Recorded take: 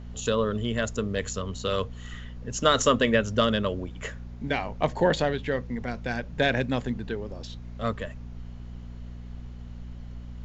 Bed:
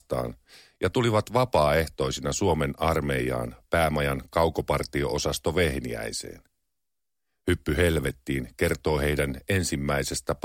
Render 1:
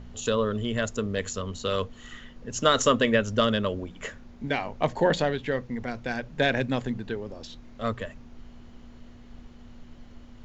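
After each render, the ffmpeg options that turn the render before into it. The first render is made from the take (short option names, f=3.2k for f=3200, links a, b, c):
-af "bandreject=f=60:t=h:w=4,bandreject=f=120:t=h:w=4,bandreject=f=180:t=h:w=4"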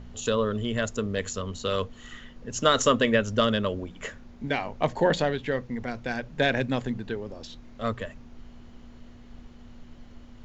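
-af anull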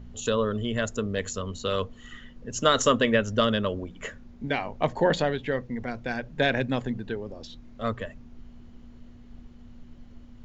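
-af "afftdn=nr=6:nf=-48"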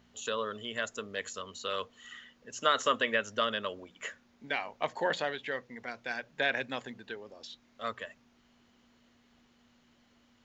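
-filter_complex "[0:a]acrossover=split=3100[a][b];[b]acompressor=threshold=-40dB:ratio=4:attack=1:release=60[c];[a][c]amix=inputs=2:normalize=0,highpass=f=1.4k:p=1"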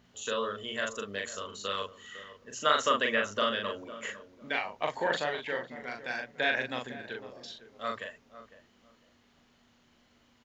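-filter_complex "[0:a]asplit=2[a][b];[b]adelay=40,volume=-3dB[c];[a][c]amix=inputs=2:normalize=0,asplit=2[d][e];[e]adelay=504,lowpass=f=1.1k:p=1,volume=-13dB,asplit=2[f][g];[g]adelay=504,lowpass=f=1.1k:p=1,volume=0.24,asplit=2[h][i];[i]adelay=504,lowpass=f=1.1k:p=1,volume=0.24[j];[d][f][h][j]amix=inputs=4:normalize=0"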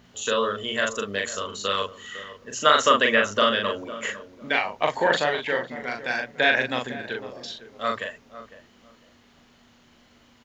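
-af "volume=8.5dB,alimiter=limit=-3dB:level=0:latency=1"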